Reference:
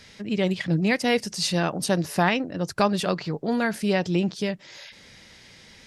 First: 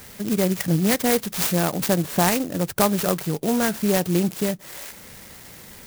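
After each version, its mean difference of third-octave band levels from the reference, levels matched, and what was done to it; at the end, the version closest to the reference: 8.0 dB: in parallel at +2 dB: compressor, threshold -32 dBFS, peak gain reduction 15.5 dB; on the sum: clock jitter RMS 0.097 ms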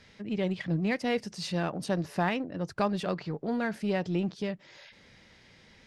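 2.0 dB: LPF 2500 Hz 6 dB/oct; in parallel at -11.5 dB: overloaded stage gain 27 dB; on the sum: gain -7 dB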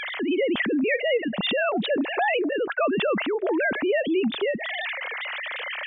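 14.5 dB: sine-wave speech; fast leveller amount 70%; gain -5.5 dB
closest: second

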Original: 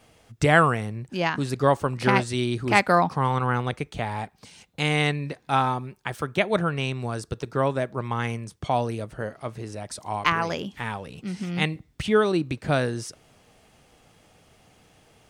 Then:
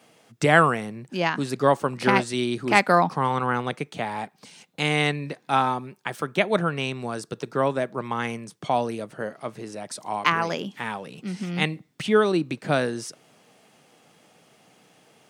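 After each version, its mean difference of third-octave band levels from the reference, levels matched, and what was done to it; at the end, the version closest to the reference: 1.5 dB: HPF 150 Hz 24 dB/oct; gain +1 dB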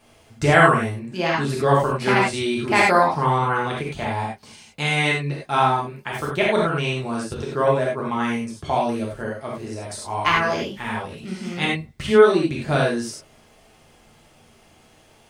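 5.0 dB: non-linear reverb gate 0.12 s flat, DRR -4.5 dB; gain -1.5 dB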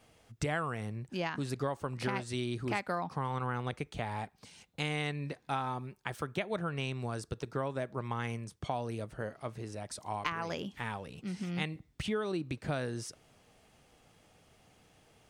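3.0 dB: compressor 6:1, threshold -24 dBFS, peak gain reduction 11.5 dB; gain -6.5 dB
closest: first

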